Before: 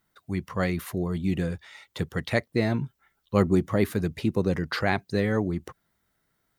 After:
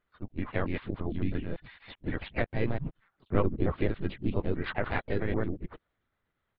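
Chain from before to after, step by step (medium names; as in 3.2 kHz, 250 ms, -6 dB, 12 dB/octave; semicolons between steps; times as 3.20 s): time reversed locally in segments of 111 ms; LPC vocoder at 8 kHz pitch kept; harmony voices -3 st -8 dB, +3 st -9 dB; trim -5.5 dB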